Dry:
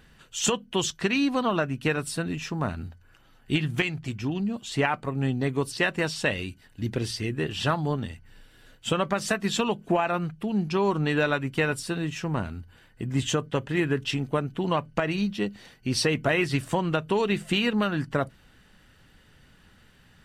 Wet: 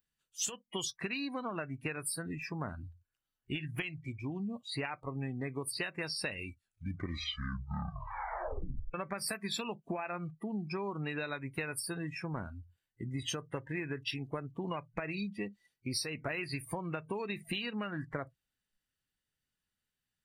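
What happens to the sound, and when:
6.43 s: tape stop 2.51 s
whole clip: spectral noise reduction 28 dB; pre-emphasis filter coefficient 0.8; compression 12:1, threshold -39 dBFS; trim +6 dB

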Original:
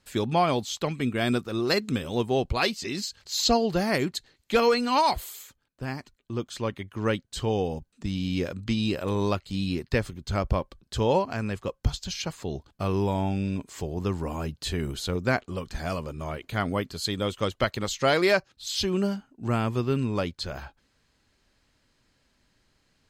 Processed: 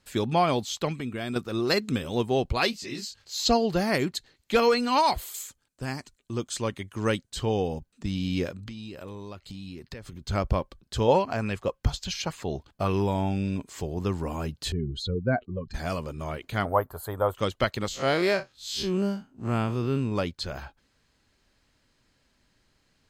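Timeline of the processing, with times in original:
0.93–1.36 s: compression 2.5:1, threshold -31 dBFS
2.71–3.45 s: detune thickener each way 50 cents -> 34 cents
5.34–7.30 s: peaking EQ 8.1 kHz +10.5 dB 1.2 oct
8.50–10.27 s: compression 8:1, threshold -36 dBFS
11.08–13.02 s: sweeping bell 3.5 Hz 560–2900 Hz +7 dB
14.72–15.74 s: spectral contrast enhancement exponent 2.2
16.65–17.35 s: FFT filter 110 Hz 0 dB, 190 Hz -11 dB, 310 Hz -7 dB, 620 Hz +9 dB, 900 Hz +12 dB, 1.6 kHz +1 dB, 2.4 kHz -17 dB, 3.8 kHz -20 dB, 5.6 kHz -23 dB, 13 kHz +10 dB
17.88–20.12 s: spectral blur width 83 ms

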